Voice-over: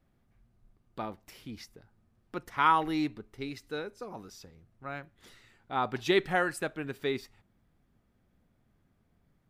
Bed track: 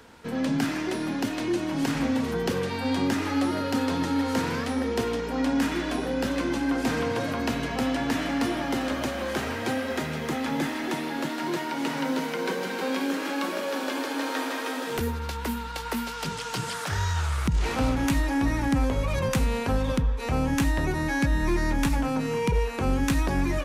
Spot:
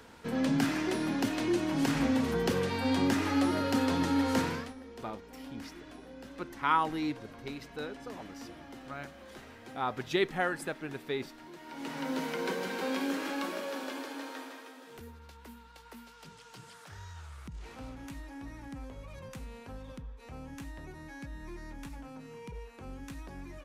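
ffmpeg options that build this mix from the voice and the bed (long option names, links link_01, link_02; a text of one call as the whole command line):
ffmpeg -i stem1.wav -i stem2.wav -filter_complex "[0:a]adelay=4050,volume=-3dB[link_01];[1:a]volume=13dB,afade=type=out:start_time=4.39:duration=0.35:silence=0.125893,afade=type=in:start_time=11.58:duration=0.7:silence=0.16788,afade=type=out:start_time=13.16:duration=1.57:silence=0.177828[link_02];[link_01][link_02]amix=inputs=2:normalize=0" out.wav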